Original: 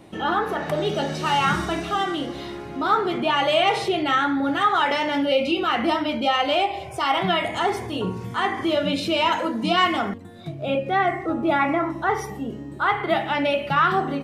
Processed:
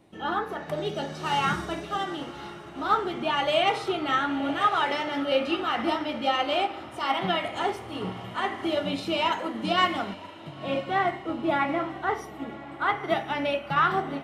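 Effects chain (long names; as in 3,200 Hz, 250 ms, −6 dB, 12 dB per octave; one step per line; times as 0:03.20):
on a send: feedback delay with all-pass diffusion 1,019 ms, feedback 52%, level −11.5 dB
on the sum: expander for the loud parts 1.5 to 1, over −33 dBFS
level −2.5 dB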